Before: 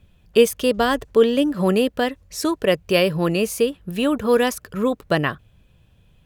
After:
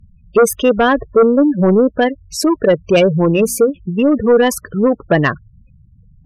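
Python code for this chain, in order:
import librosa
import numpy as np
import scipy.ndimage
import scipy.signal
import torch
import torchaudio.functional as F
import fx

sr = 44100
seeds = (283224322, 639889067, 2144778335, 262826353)

y = fx.spec_gate(x, sr, threshold_db=-15, keep='strong')
y = fx.hum_notches(y, sr, base_hz=60, count=4, at=(3.23, 3.7))
y = fx.fold_sine(y, sr, drive_db=5, ceiling_db=-5.0)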